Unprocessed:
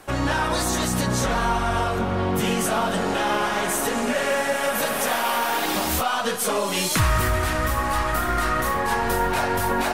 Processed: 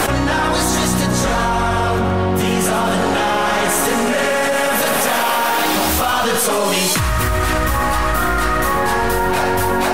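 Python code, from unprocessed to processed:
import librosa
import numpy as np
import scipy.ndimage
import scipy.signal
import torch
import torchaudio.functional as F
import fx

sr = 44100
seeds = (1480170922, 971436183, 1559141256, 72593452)

p1 = x + fx.echo_feedback(x, sr, ms=119, feedback_pct=52, wet_db=-12.0, dry=0)
y = fx.env_flatten(p1, sr, amount_pct=100)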